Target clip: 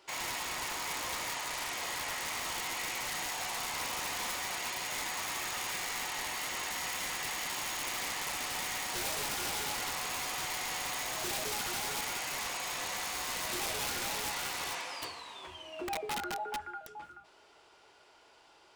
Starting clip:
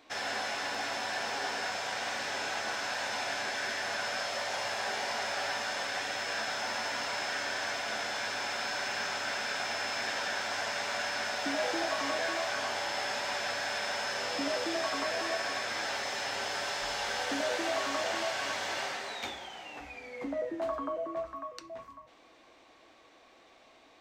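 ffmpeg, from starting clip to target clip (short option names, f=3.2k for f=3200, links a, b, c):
-af "aeval=exprs='(mod(23.7*val(0)+1,2)-1)/23.7':c=same,asetrate=56448,aresample=44100,volume=-2dB"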